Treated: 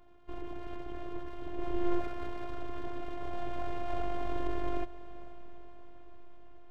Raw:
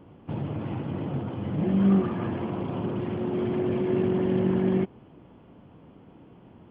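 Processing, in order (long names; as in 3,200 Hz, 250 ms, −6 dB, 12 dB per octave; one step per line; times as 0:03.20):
full-wave rectification
feedback delay with all-pass diffusion 493 ms, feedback 59%, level −16 dB
phases set to zero 351 Hz
level −5 dB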